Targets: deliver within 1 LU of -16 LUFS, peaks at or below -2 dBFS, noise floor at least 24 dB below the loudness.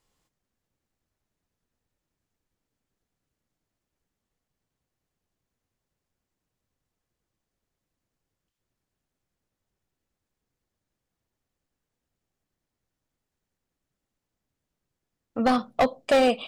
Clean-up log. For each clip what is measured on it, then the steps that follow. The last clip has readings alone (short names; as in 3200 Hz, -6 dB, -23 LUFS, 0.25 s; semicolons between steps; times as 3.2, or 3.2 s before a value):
clipped 0.4%; flat tops at -15.5 dBFS; loudness -23.5 LUFS; peak -15.5 dBFS; loudness target -16.0 LUFS
-> clip repair -15.5 dBFS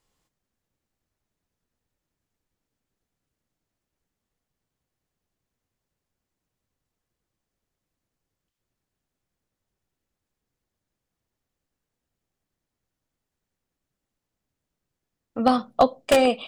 clipped 0.0%; loudness -21.5 LUFS; peak -6.5 dBFS; loudness target -16.0 LUFS
-> gain +5.5 dB; limiter -2 dBFS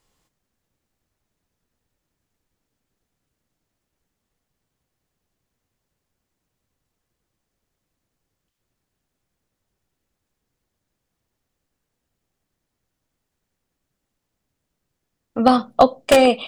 loudness -16.5 LUFS; peak -2.0 dBFS; noise floor -80 dBFS